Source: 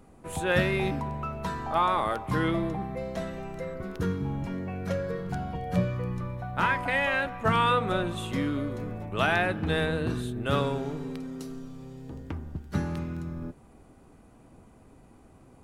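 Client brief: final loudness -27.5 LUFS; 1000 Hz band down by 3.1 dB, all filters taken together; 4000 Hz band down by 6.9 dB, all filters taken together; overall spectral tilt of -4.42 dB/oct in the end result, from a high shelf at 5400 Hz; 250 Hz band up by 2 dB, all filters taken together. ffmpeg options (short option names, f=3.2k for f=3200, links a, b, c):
-af "equalizer=f=250:t=o:g=3,equalizer=f=1k:t=o:g=-3.5,equalizer=f=4k:t=o:g=-6,highshelf=f=5.4k:g=-7.5,volume=2.5dB"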